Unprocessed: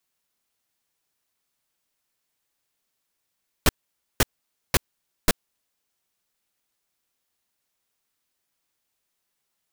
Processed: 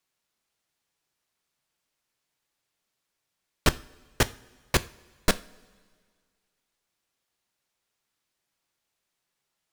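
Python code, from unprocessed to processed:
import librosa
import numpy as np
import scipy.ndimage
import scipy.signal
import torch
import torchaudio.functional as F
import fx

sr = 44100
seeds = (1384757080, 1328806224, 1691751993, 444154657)

y = fx.high_shelf(x, sr, hz=11000.0, db=-11.0)
y = fx.rev_double_slope(y, sr, seeds[0], early_s=0.37, late_s=1.9, knee_db=-18, drr_db=13.0)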